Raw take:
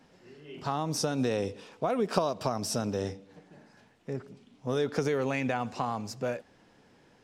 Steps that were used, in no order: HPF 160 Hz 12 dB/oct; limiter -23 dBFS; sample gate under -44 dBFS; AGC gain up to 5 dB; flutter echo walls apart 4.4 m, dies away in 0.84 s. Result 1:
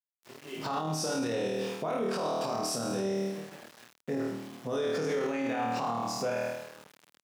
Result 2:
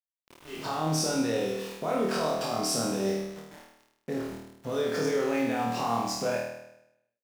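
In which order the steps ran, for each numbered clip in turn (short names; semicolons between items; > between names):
AGC > flutter echo > sample gate > limiter > HPF; AGC > limiter > HPF > sample gate > flutter echo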